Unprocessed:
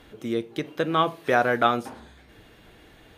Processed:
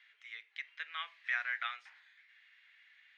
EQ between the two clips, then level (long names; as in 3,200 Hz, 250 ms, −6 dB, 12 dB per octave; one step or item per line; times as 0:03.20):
four-pole ladder high-pass 1,800 Hz, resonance 65%
low-pass filter 8,300 Hz
high-frequency loss of the air 130 metres
0.0 dB